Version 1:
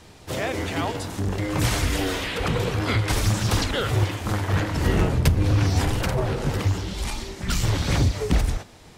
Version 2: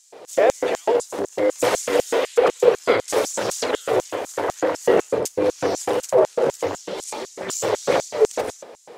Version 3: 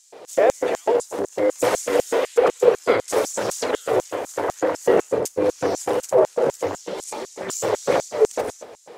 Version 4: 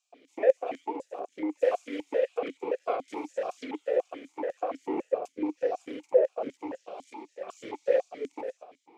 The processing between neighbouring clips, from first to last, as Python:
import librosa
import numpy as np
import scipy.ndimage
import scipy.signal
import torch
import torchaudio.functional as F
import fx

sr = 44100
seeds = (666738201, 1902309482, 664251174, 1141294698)

y1 = fx.high_shelf(x, sr, hz=2100.0, db=-10.5)
y1 = fx.filter_lfo_highpass(y1, sr, shape='square', hz=4.0, low_hz=490.0, high_hz=6900.0, q=3.6)
y1 = y1 * 10.0 ** (7.0 / 20.0)
y2 = fx.dynamic_eq(y1, sr, hz=3600.0, q=0.87, threshold_db=-41.0, ratio=4.0, max_db=-4)
y2 = y2 + 10.0 ** (-22.0 / 20.0) * np.pad(y2, (int(237 * sr / 1000.0), 0))[:len(y2)]
y3 = fx.vowel_held(y2, sr, hz=7.0)